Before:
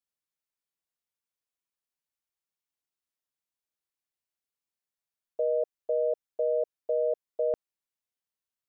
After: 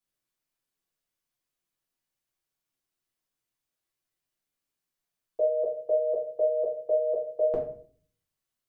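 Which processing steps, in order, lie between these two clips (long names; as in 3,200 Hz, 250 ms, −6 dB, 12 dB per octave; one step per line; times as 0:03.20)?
rectangular room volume 45 cubic metres, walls mixed, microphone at 1 metre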